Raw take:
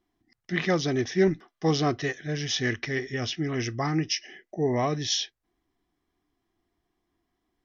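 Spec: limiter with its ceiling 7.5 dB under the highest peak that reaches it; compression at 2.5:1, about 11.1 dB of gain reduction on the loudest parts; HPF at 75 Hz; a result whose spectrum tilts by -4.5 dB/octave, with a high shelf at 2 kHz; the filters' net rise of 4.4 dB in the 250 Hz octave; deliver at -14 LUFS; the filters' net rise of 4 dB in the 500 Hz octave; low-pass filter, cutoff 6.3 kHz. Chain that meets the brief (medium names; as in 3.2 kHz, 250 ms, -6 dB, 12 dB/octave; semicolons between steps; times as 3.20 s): high-pass 75 Hz; low-pass 6.3 kHz; peaking EQ 250 Hz +5 dB; peaking EQ 500 Hz +3 dB; treble shelf 2 kHz +4.5 dB; compression 2.5:1, threshold -30 dBFS; trim +19.5 dB; peak limiter -3.5 dBFS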